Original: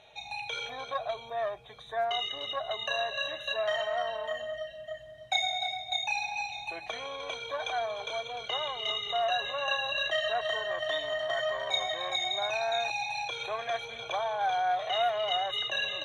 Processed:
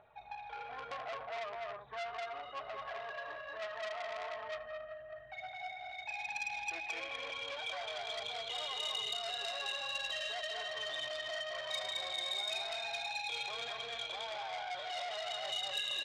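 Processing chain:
high-shelf EQ 4,300 Hz +8 dB
brickwall limiter −27 dBFS, peak gain reduction 14.5 dB
low-pass filter sweep 1,300 Hz → 3,700 Hz, 0:04.63–0:08.21
phase shifter 1.1 Hz, delay 3.3 ms, feedback 41%
high-frequency loss of the air 100 metres
loudspeakers that aren't time-aligned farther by 73 metres −2 dB, 100 metres −8 dB
saturating transformer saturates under 3,700 Hz
level −8 dB

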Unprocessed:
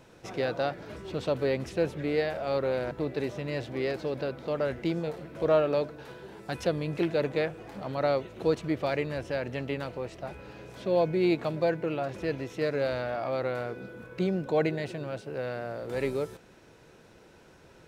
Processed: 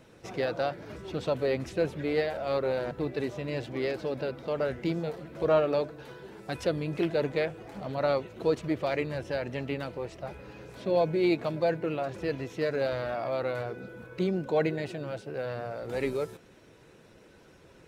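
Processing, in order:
spectral magnitudes quantised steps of 15 dB

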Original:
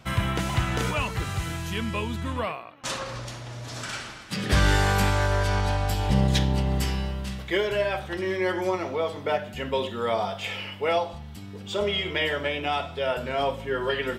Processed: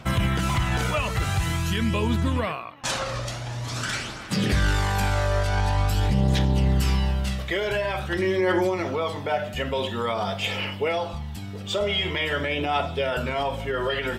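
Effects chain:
brickwall limiter −21 dBFS, peak gain reduction 9.5 dB
phase shifter 0.47 Hz, delay 1.7 ms, feedback 36%
level +4.5 dB

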